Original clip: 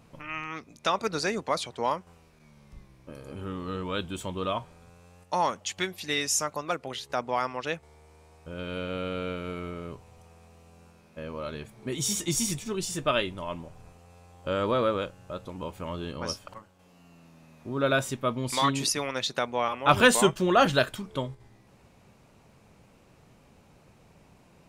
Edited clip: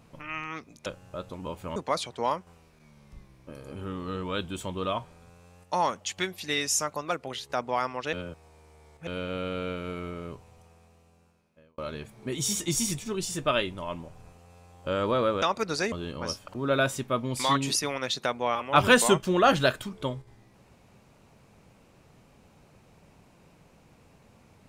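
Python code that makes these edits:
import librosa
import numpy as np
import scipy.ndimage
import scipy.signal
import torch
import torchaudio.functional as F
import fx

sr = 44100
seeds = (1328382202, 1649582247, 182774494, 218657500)

y = fx.edit(x, sr, fx.swap(start_s=0.86, length_s=0.5, other_s=15.02, other_length_s=0.9),
    fx.reverse_span(start_s=7.73, length_s=0.94),
    fx.fade_out_span(start_s=9.89, length_s=1.49),
    fx.cut(start_s=16.55, length_s=1.13), tone=tone)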